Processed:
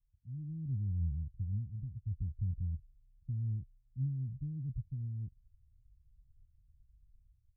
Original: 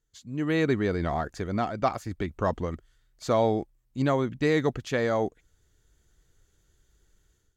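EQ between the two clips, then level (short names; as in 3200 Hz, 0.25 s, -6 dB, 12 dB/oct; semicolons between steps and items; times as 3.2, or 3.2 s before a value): inverse Chebyshev low-pass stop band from 550 Hz, stop band 70 dB; +1.5 dB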